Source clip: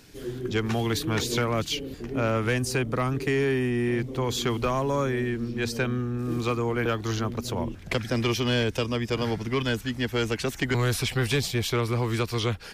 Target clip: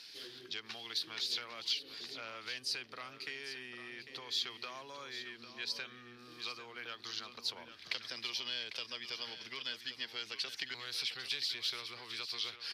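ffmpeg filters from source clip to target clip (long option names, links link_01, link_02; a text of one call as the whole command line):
ffmpeg -i in.wav -filter_complex "[0:a]highshelf=frequency=5700:width_type=q:width=3:gain=-8,acompressor=threshold=-34dB:ratio=6,bandpass=frequency=6600:width_type=q:width=0.66:csg=0,asplit=2[link_01][link_02];[link_02]aecho=0:1:799:0.282[link_03];[link_01][link_03]amix=inputs=2:normalize=0,volume=5dB" out.wav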